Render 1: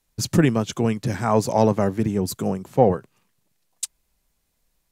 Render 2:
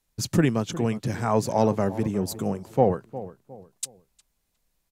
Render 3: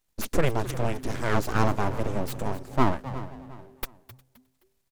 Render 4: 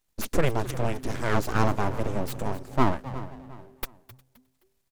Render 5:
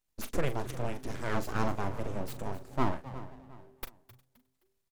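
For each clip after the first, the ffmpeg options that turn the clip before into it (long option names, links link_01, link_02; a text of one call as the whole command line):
ffmpeg -i in.wav -filter_complex "[0:a]asplit=2[link_01][link_02];[link_02]adelay=358,lowpass=frequency=1400:poles=1,volume=-14.5dB,asplit=2[link_03][link_04];[link_04]adelay=358,lowpass=frequency=1400:poles=1,volume=0.36,asplit=2[link_05][link_06];[link_06]adelay=358,lowpass=frequency=1400:poles=1,volume=0.36[link_07];[link_01][link_03][link_05][link_07]amix=inputs=4:normalize=0,volume=-3.5dB" out.wav
ffmpeg -i in.wav -filter_complex "[0:a]aeval=exprs='abs(val(0))':channel_layout=same,asplit=4[link_01][link_02][link_03][link_04];[link_02]adelay=261,afreqshift=-130,volume=-14.5dB[link_05];[link_03]adelay=522,afreqshift=-260,volume=-23.9dB[link_06];[link_04]adelay=783,afreqshift=-390,volume=-33.2dB[link_07];[link_01][link_05][link_06][link_07]amix=inputs=4:normalize=0" out.wav
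ffmpeg -i in.wav -af "aeval=exprs='if(lt(val(0),0),0.708*val(0),val(0))':channel_layout=same" out.wav
ffmpeg -i in.wav -filter_complex "[0:a]asplit=2[link_01][link_02];[link_02]adelay=41,volume=-11.5dB[link_03];[link_01][link_03]amix=inputs=2:normalize=0,volume=-7.5dB" out.wav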